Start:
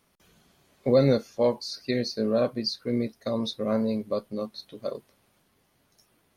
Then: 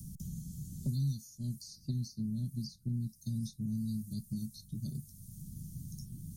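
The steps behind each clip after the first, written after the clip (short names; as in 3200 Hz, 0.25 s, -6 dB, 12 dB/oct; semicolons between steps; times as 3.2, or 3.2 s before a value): elliptic band-stop 160–6700 Hz, stop band 50 dB; three-band squash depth 100%; gain +3 dB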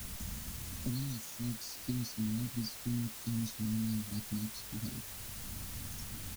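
comb 3.2 ms, depth 86%; requantised 8-bit, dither triangular; gain +1 dB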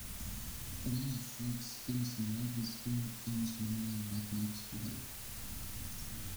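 flutter echo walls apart 9.8 m, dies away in 0.59 s; gain -2.5 dB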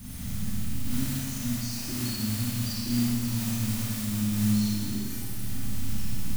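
bin magnitudes rounded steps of 30 dB; Schroeder reverb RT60 2.2 s, combs from 26 ms, DRR -7 dB; gain +3 dB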